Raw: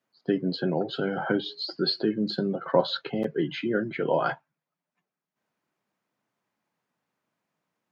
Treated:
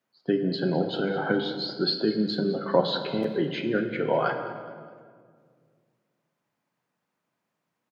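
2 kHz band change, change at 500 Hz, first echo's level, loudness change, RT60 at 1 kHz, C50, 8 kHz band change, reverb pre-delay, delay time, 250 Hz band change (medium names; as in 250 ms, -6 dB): +1.0 dB, +1.5 dB, -16.5 dB, +1.0 dB, 1.7 s, 7.5 dB, no reading, 26 ms, 208 ms, +1.0 dB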